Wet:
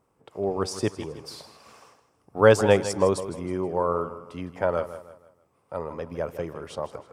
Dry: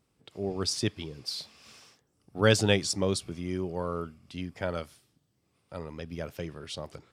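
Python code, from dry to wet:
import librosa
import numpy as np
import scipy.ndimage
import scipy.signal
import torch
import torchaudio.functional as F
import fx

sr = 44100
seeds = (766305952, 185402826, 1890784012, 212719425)

p1 = fx.graphic_eq(x, sr, hz=(500, 1000, 4000), db=(7, 11, -9))
y = p1 + fx.echo_feedback(p1, sr, ms=159, feedback_pct=38, wet_db=-13, dry=0)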